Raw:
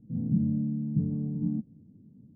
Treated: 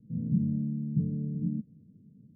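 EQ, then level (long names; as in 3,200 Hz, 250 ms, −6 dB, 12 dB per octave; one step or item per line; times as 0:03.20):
Chebyshev low-pass with heavy ripple 640 Hz, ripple 6 dB
0.0 dB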